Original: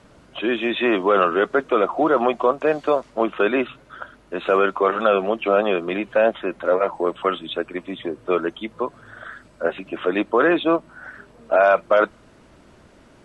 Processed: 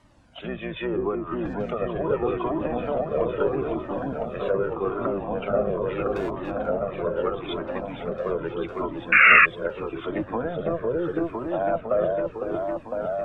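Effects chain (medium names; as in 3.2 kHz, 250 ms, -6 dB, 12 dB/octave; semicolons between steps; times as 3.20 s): octave divider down 1 oct, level -4 dB; 1.15–1.71 s: compressor with a negative ratio -28 dBFS, ratio -1; low-pass that closes with the level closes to 790 Hz, closed at -14.5 dBFS; 6.09–6.66 s: overload inside the chain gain 19 dB; wow and flutter 25 cents; on a send: delay with an opening low-pass 505 ms, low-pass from 750 Hz, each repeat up 1 oct, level 0 dB; 9.12–9.46 s: on the sum: painted sound noise 1.1–2.8 kHz -6 dBFS; Shepard-style flanger falling 0.79 Hz; trim -3.5 dB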